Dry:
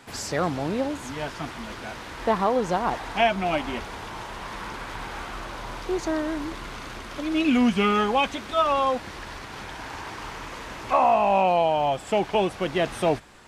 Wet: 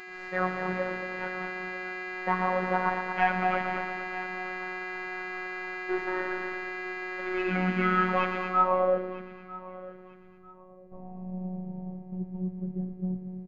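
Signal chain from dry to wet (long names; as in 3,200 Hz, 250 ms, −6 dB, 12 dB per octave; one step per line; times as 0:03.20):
stylus tracing distortion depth 0.046 ms
downward expander −26 dBFS
upward compression, threshold −42 dBFS
hum with harmonics 400 Hz, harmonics 20, −36 dBFS −1 dB per octave
on a send: echo machine with several playback heads 115 ms, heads first and second, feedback 58%, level −12.5 dB
on the sum: low-pass filter sweep 1,700 Hz → 160 Hz, 0:08.45–0:09.42
phases set to zero 184 Hz
repeating echo 947 ms, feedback 29%, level −19 dB
level −4.5 dB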